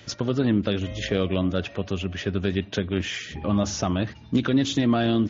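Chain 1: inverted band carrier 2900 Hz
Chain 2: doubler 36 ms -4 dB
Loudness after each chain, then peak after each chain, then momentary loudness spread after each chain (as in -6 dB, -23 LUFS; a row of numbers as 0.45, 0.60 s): -22.0, -24.0 LUFS; -10.5, -7.5 dBFS; 7, 7 LU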